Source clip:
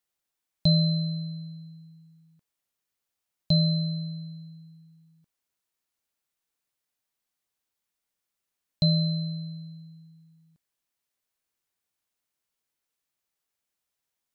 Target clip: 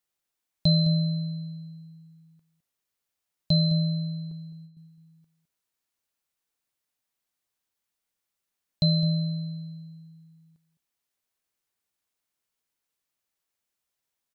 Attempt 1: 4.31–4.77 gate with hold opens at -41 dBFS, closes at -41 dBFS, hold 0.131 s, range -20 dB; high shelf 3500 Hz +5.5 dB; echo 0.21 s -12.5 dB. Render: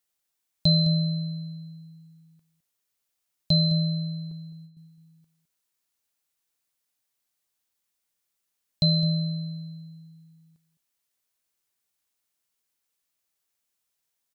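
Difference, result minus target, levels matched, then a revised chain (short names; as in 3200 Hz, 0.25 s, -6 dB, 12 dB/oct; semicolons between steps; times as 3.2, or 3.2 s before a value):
8000 Hz band +3.5 dB
4.31–4.77 gate with hold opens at -41 dBFS, closes at -41 dBFS, hold 0.131 s, range -20 dB; echo 0.21 s -12.5 dB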